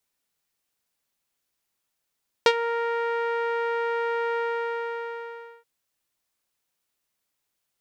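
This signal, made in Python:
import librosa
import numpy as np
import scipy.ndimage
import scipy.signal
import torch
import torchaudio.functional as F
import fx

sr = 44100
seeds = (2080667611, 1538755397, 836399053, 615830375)

y = fx.sub_voice(sr, note=70, wave='saw', cutoff_hz=1700.0, q=1.4, env_oct=1.5, env_s=0.11, attack_ms=1.8, decay_s=0.06, sustain_db=-13.0, release_s=1.27, note_s=1.91, slope=12)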